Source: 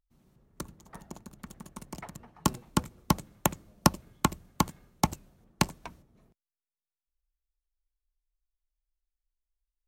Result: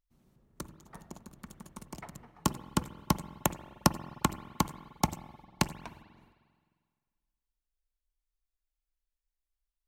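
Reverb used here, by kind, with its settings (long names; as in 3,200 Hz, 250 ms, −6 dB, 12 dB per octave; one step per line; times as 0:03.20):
spring reverb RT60 1.8 s, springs 44/50 ms, chirp 45 ms, DRR 14 dB
level −2.5 dB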